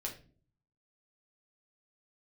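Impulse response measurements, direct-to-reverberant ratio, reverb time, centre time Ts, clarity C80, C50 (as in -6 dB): -1.5 dB, no single decay rate, 18 ms, 15.0 dB, 10.0 dB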